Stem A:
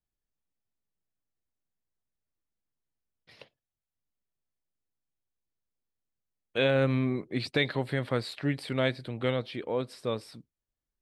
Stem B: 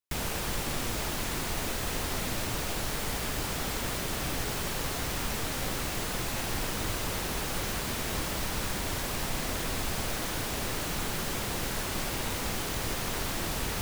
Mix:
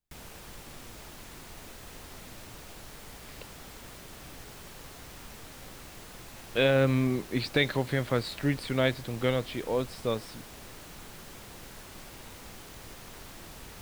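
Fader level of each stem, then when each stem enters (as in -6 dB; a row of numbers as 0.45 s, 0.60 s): +1.5 dB, -14.0 dB; 0.00 s, 0.00 s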